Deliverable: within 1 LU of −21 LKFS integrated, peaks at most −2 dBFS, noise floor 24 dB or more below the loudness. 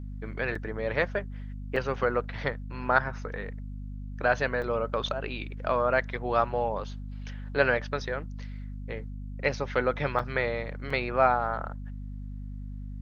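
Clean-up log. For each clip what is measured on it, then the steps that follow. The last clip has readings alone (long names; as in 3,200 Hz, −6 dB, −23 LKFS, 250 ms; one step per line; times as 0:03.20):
number of dropouts 5; longest dropout 4.1 ms; mains hum 50 Hz; hum harmonics up to 250 Hz; level of the hum −35 dBFS; integrated loudness −29.5 LKFS; sample peak −6.5 dBFS; target loudness −21.0 LKFS
→ repair the gap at 0:00.55/0:01.76/0:04.62/0:10.19/0:10.90, 4.1 ms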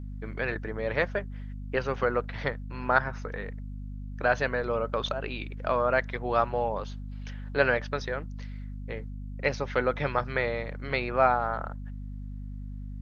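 number of dropouts 0; mains hum 50 Hz; hum harmonics up to 250 Hz; level of the hum −35 dBFS
→ mains-hum notches 50/100/150/200/250 Hz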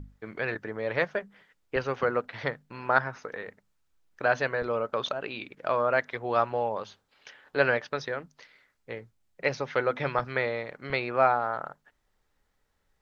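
mains hum none found; integrated loudness −29.5 LKFS; sample peak −7.0 dBFS; target loudness −21.0 LKFS
→ level +8.5 dB
brickwall limiter −2 dBFS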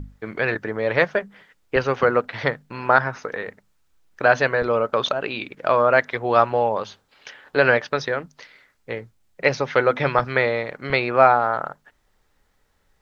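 integrated loudness −21.0 LKFS; sample peak −2.0 dBFS; background noise floor −65 dBFS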